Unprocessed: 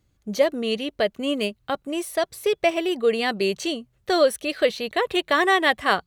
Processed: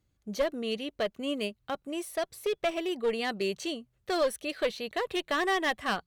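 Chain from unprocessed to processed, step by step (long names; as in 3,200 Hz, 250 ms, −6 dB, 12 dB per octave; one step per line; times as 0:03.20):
asymmetric clip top −17.5 dBFS
level −7.5 dB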